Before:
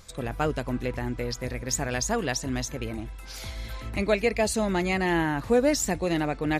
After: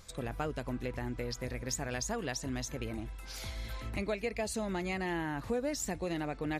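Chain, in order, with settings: compressor 2.5:1, threshold -30 dBFS, peak gain reduction 9.5 dB; gain -4 dB

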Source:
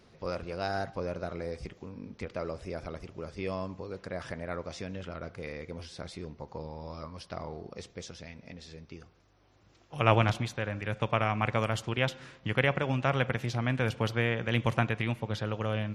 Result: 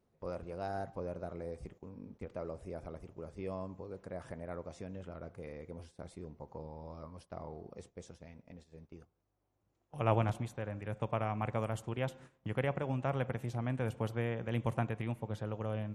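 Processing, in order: EQ curve 860 Hz 0 dB, 1400 Hz -6 dB, 5000 Hz -12 dB, 8400 Hz +1 dB; gate -48 dBFS, range -11 dB; gain -5.5 dB

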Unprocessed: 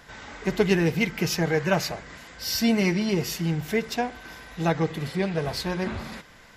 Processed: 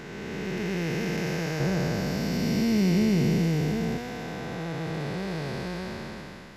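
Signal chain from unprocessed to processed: time blur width 0.92 s; 1.6–3.98 low shelf 460 Hz +8.5 dB

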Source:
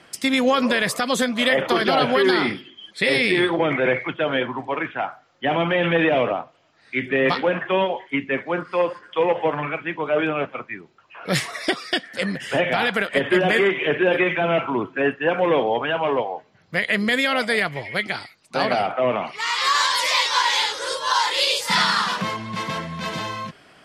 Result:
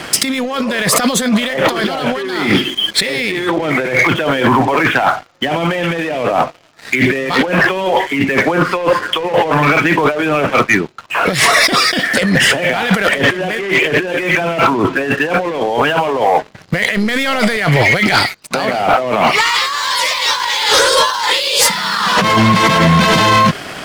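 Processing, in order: 16.96–17.57 half-wave gain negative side -7 dB; negative-ratio compressor -31 dBFS, ratio -1; sample leveller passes 3; gain +6 dB

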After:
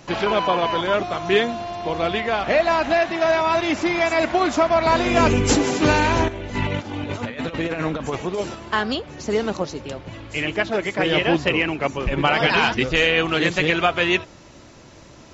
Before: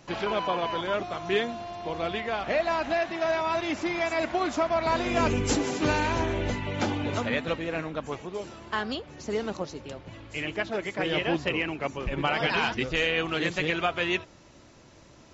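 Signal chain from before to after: 6.28–8.55 negative-ratio compressor -33 dBFS, ratio -0.5; gain +8 dB

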